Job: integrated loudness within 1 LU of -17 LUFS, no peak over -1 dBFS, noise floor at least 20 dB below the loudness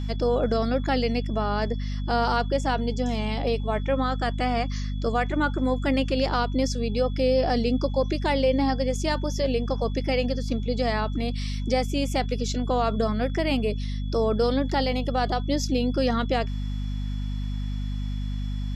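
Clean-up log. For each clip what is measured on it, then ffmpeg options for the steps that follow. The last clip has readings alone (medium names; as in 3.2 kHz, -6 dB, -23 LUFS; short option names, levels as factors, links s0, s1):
hum 50 Hz; highest harmonic 250 Hz; hum level -26 dBFS; steady tone 3.4 kHz; tone level -49 dBFS; loudness -26.0 LUFS; peak level -10.5 dBFS; loudness target -17.0 LUFS
-> -af "bandreject=f=50:t=h:w=4,bandreject=f=100:t=h:w=4,bandreject=f=150:t=h:w=4,bandreject=f=200:t=h:w=4,bandreject=f=250:t=h:w=4"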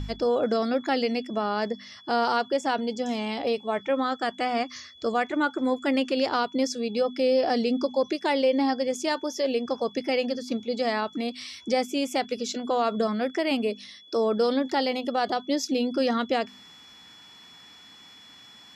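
hum not found; steady tone 3.4 kHz; tone level -49 dBFS
-> -af "bandreject=f=3400:w=30"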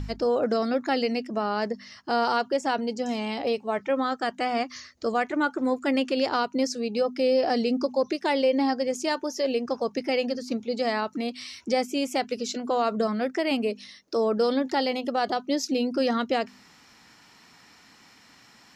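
steady tone not found; loudness -26.5 LUFS; peak level -12.0 dBFS; loudness target -17.0 LUFS
-> -af "volume=2.99"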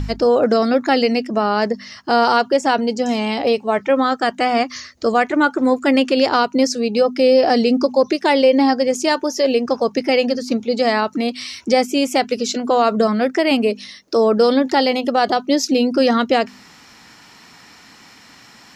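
loudness -17.0 LUFS; peak level -2.5 dBFS; noise floor -46 dBFS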